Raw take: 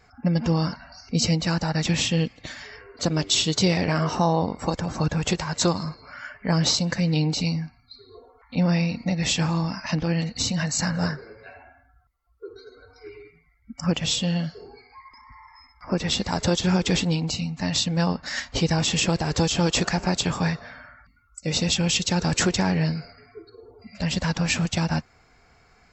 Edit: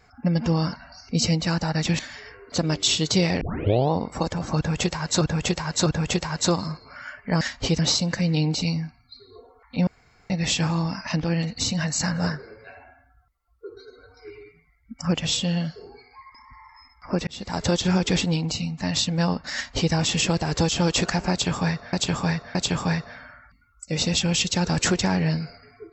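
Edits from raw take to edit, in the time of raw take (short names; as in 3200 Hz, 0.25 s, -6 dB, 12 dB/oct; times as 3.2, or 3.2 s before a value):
1.99–2.46 cut
3.88 tape start 0.50 s
5.03–5.68 loop, 3 plays
8.66–9.09 room tone
16.06–16.43 fade in
18.33–18.71 copy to 6.58
20.1–20.72 loop, 3 plays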